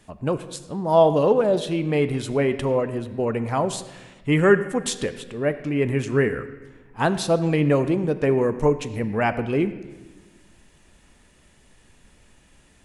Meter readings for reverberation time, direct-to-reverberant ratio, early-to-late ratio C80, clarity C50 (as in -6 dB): 1.3 s, 11.0 dB, 13.5 dB, 12.5 dB